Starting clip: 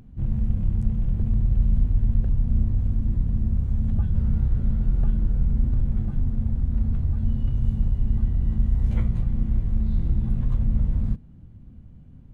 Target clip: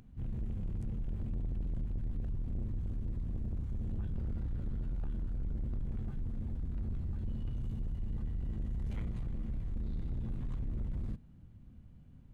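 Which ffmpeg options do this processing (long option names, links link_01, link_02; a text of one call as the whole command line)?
ffmpeg -i in.wav -af "asoftclip=type=tanh:threshold=-22.5dB,tiltshelf=frequency=920:gain=-3.5,volume=-6dB" out.wav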